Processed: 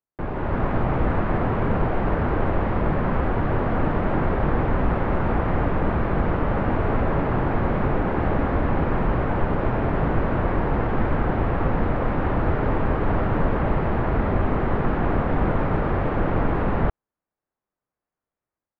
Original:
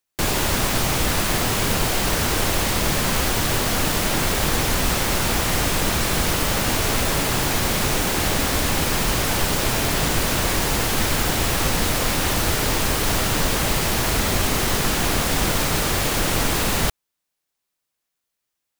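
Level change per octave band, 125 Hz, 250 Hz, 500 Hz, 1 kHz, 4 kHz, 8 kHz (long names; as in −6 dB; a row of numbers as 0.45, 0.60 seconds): +1.5 dB, +1.5 dB, +1.0 dB, −0.5 dB, −25.0 dB, below −40 dB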